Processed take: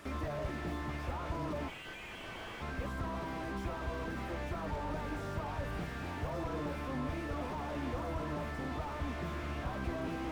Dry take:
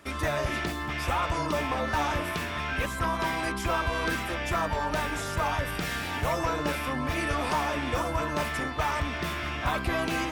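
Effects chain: peak limiter -28.5 dBFS, peak gain reduction 10 dB; 1.68–2.62 s: frequency inversion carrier 3.3 kHz; slew-rate limiter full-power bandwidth 8.8 Hz; trim +1 dB

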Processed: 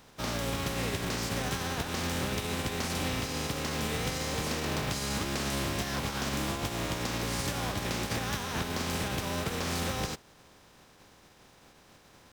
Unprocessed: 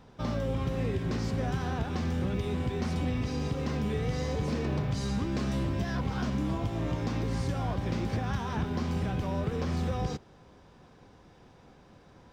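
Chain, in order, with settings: spectral contrast reduction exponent 0.51; pitch shift +0.5 st; trim -2 dB

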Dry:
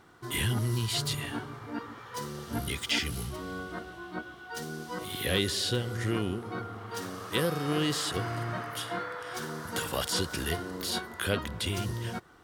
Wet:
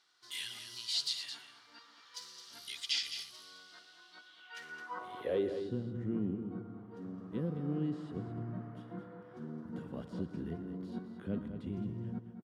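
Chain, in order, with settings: band-pass sweep 4.6 kHz -> 210 Hz, 4.23–5.75 s; multi-tap echo 119/215 ms -15/-9.5 dB; trim +1 dB

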